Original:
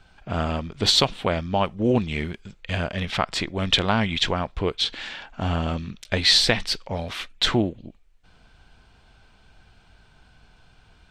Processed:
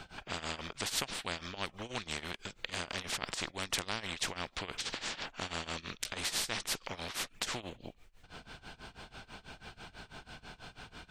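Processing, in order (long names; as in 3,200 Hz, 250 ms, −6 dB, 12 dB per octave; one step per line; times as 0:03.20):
amplitude tremolo 6.1 Hz, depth 94%
every bin compressed towards the loudest bin 4 to 1
level −7.5 dB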